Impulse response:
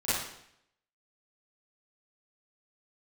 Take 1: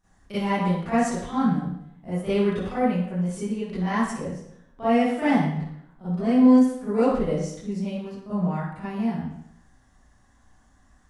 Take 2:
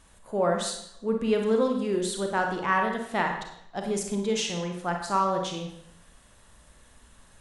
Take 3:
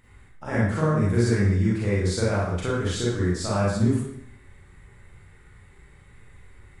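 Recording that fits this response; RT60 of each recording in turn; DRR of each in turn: 1; 0.70, 0.70, 0.70 s; -15.0, 2.0, -7.5 dB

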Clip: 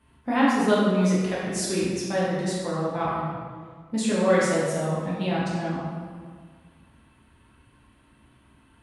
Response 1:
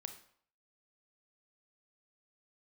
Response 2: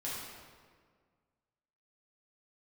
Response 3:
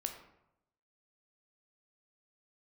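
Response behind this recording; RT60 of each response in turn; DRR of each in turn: 2; 0.60, 1.8, 0.85 s; 7.0, -8.0, 4.5 dB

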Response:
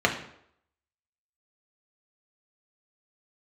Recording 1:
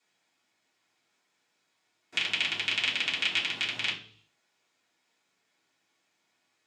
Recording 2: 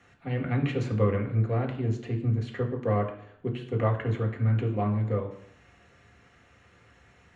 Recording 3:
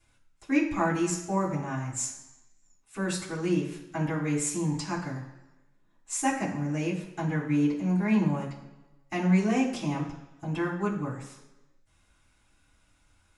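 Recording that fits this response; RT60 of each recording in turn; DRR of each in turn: 2; 0.50, 0.70, 1.1 s; -8.5, 0.5, -10.0 dB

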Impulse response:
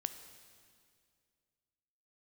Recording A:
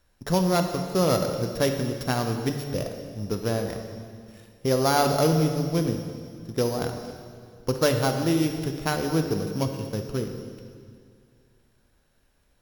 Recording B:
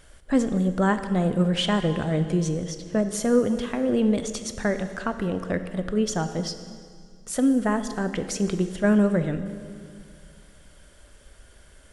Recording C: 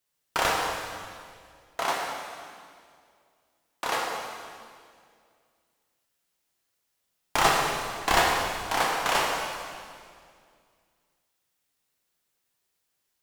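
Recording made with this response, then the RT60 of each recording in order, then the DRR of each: B; 2.2, 2.2, 2.2 s; 4.5, 9.0, -2.5 dB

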